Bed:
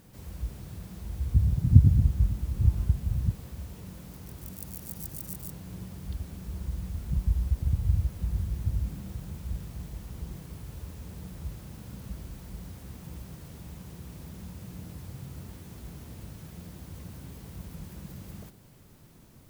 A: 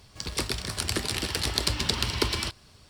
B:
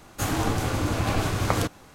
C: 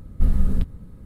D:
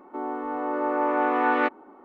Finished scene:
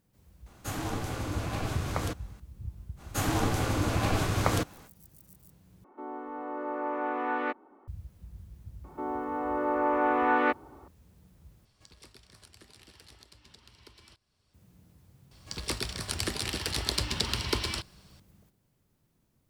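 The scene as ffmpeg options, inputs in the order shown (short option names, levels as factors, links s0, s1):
-filter_complex "[2:a]asplit=2[s0][s1];[4:a]asplit=2[s2][s3];[1:a]asplit=2[s4][s5];[0:a]volume=0.141[s6];[s4]acompressor=threshold=0.0282:ratio=6:attack=1.7:release=682:knee=1:detection=rms[s7];[s6]asplit=3[s8][s9][s10];[s8]atrim=end=5.844[s11];[s2]atrim=end=2.04,asetpts=PTS-STARTPTS,volume=0.376[s12];[s9]atrim=start=7.876:end=11.654[s13];[s7]atrim=end=2.89,asetpts=PTS-STARTPTS,volume=0.2[s14];[s10]atrim=start=14.536[s15];[s0]atrim=end=1.94,asetpts=PTS-STARTPTS,volume=0.376,afade=t=in:d=0.004:c=hsin,afade=t=out:st=1.936:d=0.004:c=hsin,adelay=460[s16];[s1]atrim=end=1.94,asetpts=PTS-STARTPTS,volume=0.75,afade=t=in:d=0.05,afade=t=out:st=1.89:d=0.05,adelay=2960[s17];[s3]atrim=end=2.04,asetpts=PTS-STARTPTS,volume=0.75,afade=t=in:d=0.004:c=hsin,afade=t=out:st=2.036:d=0.004:c=hsin,adelay=8840[s18];[s5]atrim=end=2.89,asetpts=PTS-STARTPTS,volume=0.668,afade=t=in:d=0.004:c=hsin,afade=t=out:st=2.886:d=0.004:c=hsin,adelay=15310[s19];[s11][s12]acrossfade=d=0.004:c1=hsin:c2=hsin[s20];[s20][s13]acrossfade=d=0.004:c1=hsin:c2=hsin[s21];[s21][s14]acrossfade=d=0.004:c1=hsin:c2=hsin[s22];[s22][s15]acrossfade=d=0.004:c1=hsin:c2=hsin[s23];[s23][s16][s17][s18][s19]amix=inputs=5:normalize=0"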